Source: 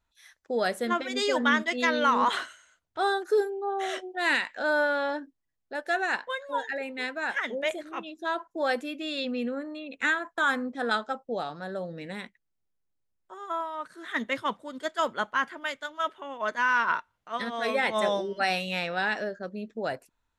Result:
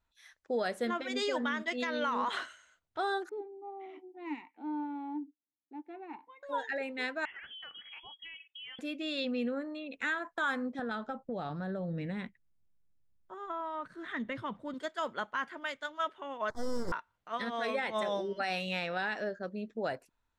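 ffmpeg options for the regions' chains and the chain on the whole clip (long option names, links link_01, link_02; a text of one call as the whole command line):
ffmpeg -i in.wav -filter_complex "[0:a]asettb=1/sr,asplit=3[link_01][link_02][link_03];[link_01]atrim=end=3.294[link_04];[link_02]atrim=start=3.29:end=6.43,asetpts=PTS-STARTPTS,afade=type=in:duration=0.004:curve=qsin,afade=type=out:start_time=3.136:duration=0.004:curve=qsin,asplit=3[link_05][link_06][link_07];[link_05]bandpass=frequency=300:width_type=q:width=8,volume=0dB[link_08];[link_06]bandpass=frequency=870:width_type=q:width=8,volume=-6dB[link_09];[link_07]bandpass=frequency=2240:width_type=q:width=8,volume=-9dB[link_10];[link_08][link_09][link_10]amix=inputs=3:normalize=0,lowshelf=frequency=380:gain=6.5,adynamicsmooth=sensitivity=3.5:basefreq=3300[link_11];[link_03]atrim=start=6.426[link_12];[link_04][link_11]acrossfade=duration=0.004:curve1=hsin:curve2=qsin[link_13];[link_13][link_12]acrossfade=duration=0.004:curve1=qsin:curve2=hsin,asettb=1/sr,asplit=3[link_14][link_15][link_16];[link_14]atrim=end=7.254[link_17];[link_15]atrim=start=7.25:end=8.79,asetpts=PTS-STARTPTS,afade=type=in:duration=0.004:curve=qsin,afade=type=out:start_time=1.536:duration=0.004:curve=qsin,lowshelf=frequency=280:gain=-8.5,lowpass=frequency=3100:width_type=q:width=0.5098,lowpass=frequency=3100:width_type=q:width=0.6013,lowpass=frequency=3100:width_type=q:width=0.9,lowpass=frequency=3100:width_type=q:width=2.563,afreqshift=-3600,acompressor=threshold=-41dB:ratio=8:attack=3.2:release=140:knee=1:detection=peak[link_18];[link_16]atrim=start=8.786[link_19];[link_17][link_18]acrossfade=duration=0.004:curve1=hsin:curve2=qsin[link_20];[link_20][link_19]acrossfade=duration=0.004:curve1=qsin:curve2=hsin,asettb=1/sr,asplit=3[link_21][link_22][link_23];[link_21]atrim=end=10.794[link_24];[link_22]atrim=start=10.79:end=14.74,asetpts=PTS-STARTPTS,afade=type=in:duration=0.004:curve=qsin,afade=type=out:start_time=3.946:duration=0.004:curve=qsin,bass=frequency=250:gain=12,treble=frequency=4000:gain=-8,acompressor=threshold=-30dB:ratio=6:attack=3.2:release=140:knee=1:detection=peak[link_25];[link_23]atrim=start=14.736[link_26];[link_24][link_25]acrossfade=duration=0.004:curve1=hsin:curve2=qsin[link_27];[link_27][link_26]acrossfade=duration=0.004:curve1=qsin:curve2=hsin,asettb=1/sr,asplit=3[link_28][link_29][link_30];[link_28]atrim=end=16.504[link_31];[link_29]atrim=start=16.5:end=16.92,asetpts=PTS-STARTPTS,afade=type=in:duration=0.004:curve=qsin,afade=type=out:start_time=0.416:duration=0.004:curve=qsin,equalizer=frequency=2900:width_type=o:width=0.37:gain=-9,aeval=exprs='abs(val(0))':channel_layout=same,asuperstop=centerf=2600:order=4:qfactor=0.73[link_32];[link_30]atrim=start=16.916[link_33];[link_31][link_32]acrossfade=duration=0.004:curve1=hsin:curve2=qsin[link_34];[link_34][link_33]acrossfade=duration=0.004:curve1=qsin:curve2=hsin,highshelf=frequency=9600:gain=-11,alimiter=limit=-21dB:level=0:latency=1:release=174,volume=-2.5dB" out.wav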